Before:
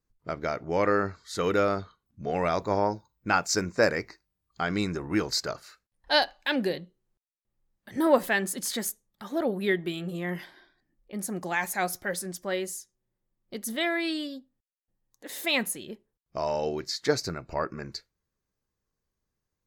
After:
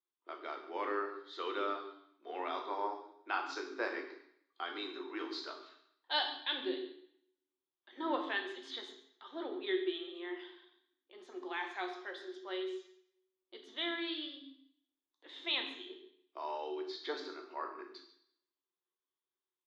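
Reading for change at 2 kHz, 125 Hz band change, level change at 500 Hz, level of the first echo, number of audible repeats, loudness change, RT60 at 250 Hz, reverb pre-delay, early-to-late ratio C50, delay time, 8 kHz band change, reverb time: -11.0 dB, under -40 dB, -12.5 dB, -16.5 dB, 1, -11.0 dB, 0.70 s, 3 ms, 7.5 dB, 0.139 s, under -25 dB, 0.65 s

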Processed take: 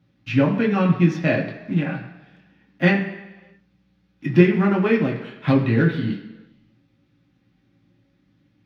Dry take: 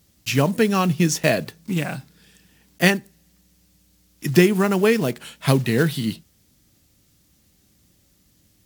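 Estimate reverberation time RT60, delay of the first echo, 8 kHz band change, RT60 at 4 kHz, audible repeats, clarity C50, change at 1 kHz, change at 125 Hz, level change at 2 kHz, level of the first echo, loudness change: 1.2 s, none, under -20 dB, 1.1 s, none, 7.5 dB, -2.0 dB, +1.5 dB, -1.0 dB, none, +0.5 dB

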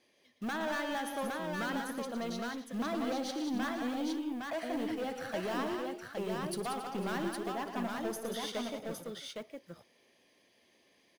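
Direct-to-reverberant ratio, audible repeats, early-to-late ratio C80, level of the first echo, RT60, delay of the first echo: none, 6, none, -17.5 dB, none, 59 ms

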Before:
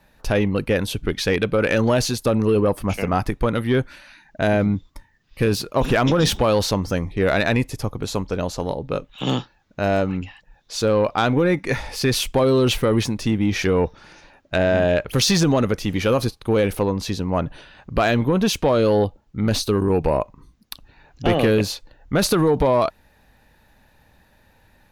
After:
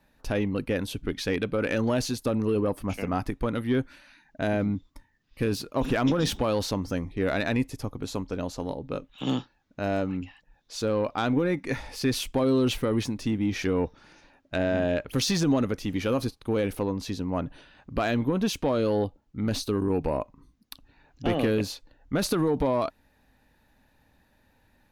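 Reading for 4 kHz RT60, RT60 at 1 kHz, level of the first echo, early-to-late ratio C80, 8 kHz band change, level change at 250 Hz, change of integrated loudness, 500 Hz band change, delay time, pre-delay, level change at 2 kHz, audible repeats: none, none, none, none, -8.5 dB, -5.0 dB, -7.0 dB, -8.0 dB, none, none, -8.5 dB, none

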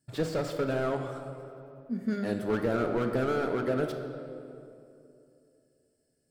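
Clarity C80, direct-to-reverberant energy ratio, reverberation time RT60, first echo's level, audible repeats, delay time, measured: 7.5 dB, 4.5 dB, 2.7 s, none, none, none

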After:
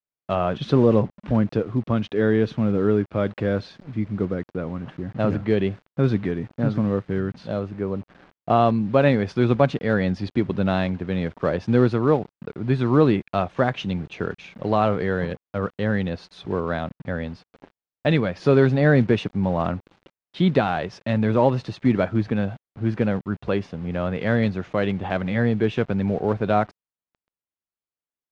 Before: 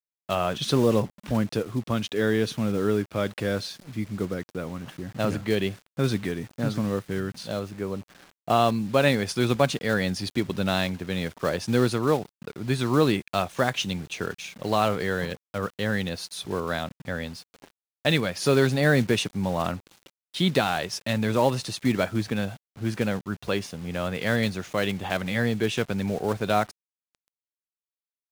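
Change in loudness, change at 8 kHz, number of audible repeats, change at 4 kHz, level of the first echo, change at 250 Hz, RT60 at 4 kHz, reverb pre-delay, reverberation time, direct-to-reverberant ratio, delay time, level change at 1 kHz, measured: +3.5 dB, under -15 dB, none, -7.0 dB, none, +4.5 dB, none, none, none, none, none, +2.5 dB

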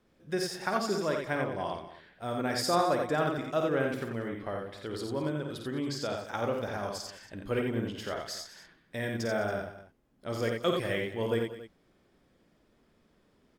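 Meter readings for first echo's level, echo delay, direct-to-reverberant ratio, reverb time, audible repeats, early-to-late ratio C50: -7.0 dB, 52 ms, none, none, 4, none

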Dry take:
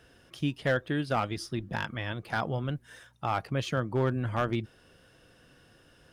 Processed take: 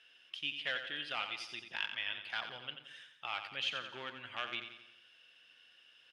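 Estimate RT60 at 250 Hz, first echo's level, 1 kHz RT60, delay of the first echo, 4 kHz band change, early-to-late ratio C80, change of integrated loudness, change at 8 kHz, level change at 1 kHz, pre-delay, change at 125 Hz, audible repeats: none, -8.5 dB, none, 88 ms, +4.0 dB, none, -8.0 dB, -10.0 dB, -11.5 dB, none, -31.0 dB, 5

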